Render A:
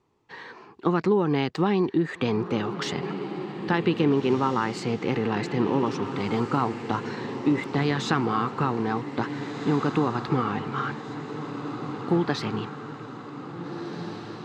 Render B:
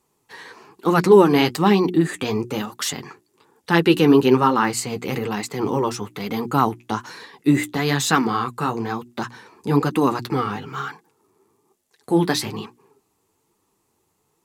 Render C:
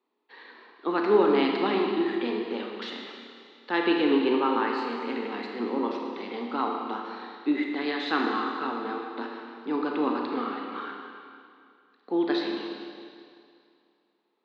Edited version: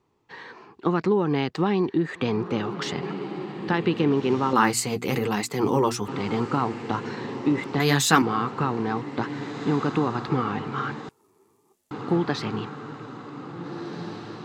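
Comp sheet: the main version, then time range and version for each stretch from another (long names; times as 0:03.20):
A
0:04.53–0:06.08: punch in from B
0:07.80–0:08.22: punch in from B
0:11.09–0:11.91: punch in from B
not used: C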